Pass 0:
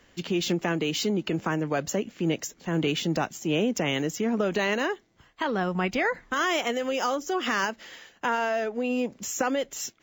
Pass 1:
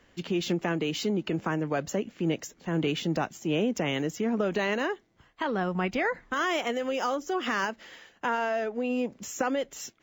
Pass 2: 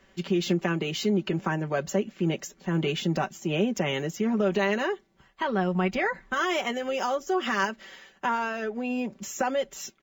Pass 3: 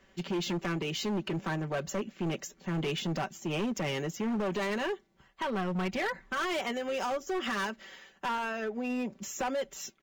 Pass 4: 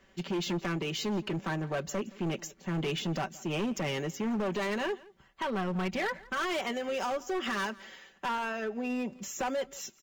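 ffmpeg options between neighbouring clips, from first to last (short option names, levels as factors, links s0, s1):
-af "highshelf=f=3800:g=-6,volume=0.841"
-af "aecho=1:1:5.2:0.65"
-af "asoftclip=type=hard:threshold=0.0562,volume=0.708"
-af "aecho=1:1:170:0.0794"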